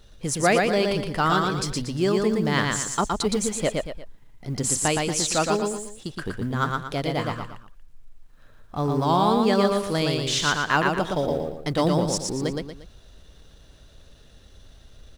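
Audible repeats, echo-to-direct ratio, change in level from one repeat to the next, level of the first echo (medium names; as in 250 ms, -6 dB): 3, -2.5 dB, -8.5 dB, -3.0 dB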